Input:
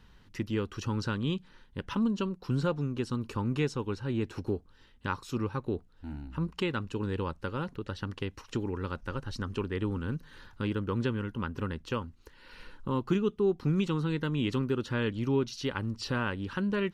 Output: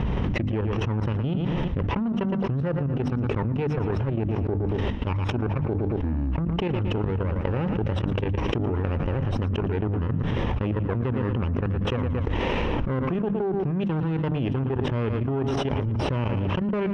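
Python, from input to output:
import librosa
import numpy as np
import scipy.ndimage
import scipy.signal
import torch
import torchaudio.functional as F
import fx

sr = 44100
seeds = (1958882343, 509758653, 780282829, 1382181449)

p1 = fx.lower_of_two(x, sr, delay_ms=0.34)
p2 = fx.dynamic_eq(p1, sr, hz=270.0, q=1.0, threshold_db=-40.0, ratio=4.0, max_db=-5)
p3 = scipy.signal.sosfilt(scipy.signal.butter(2, 57.0, 'highpass', fs=sr, output='sos'), p2)
p4 = fx.low_shelf(p3, sr, hz=76.0, db=7.0)
p5 = fx.level_steps(p4, sr, step_db=16)
p6 = scipy.signal.sosfilt(scipy.signal.butter(2, 1400.0, 'lowpass', fs=sr, output='sos'), p5)
p7 = fx.hum_notches(p6, sr, base_hz=50, count=6)
p8 = p7 + fx.echo_feedback(p7, sr, ms=114, feedback_pct=33, wet_db=-17, dry=0)
p9 = fx.env_flatten(p8, sr, amount_pct=100)
y = F.gain(torch.from_numpy(p9), 5.5).numpy()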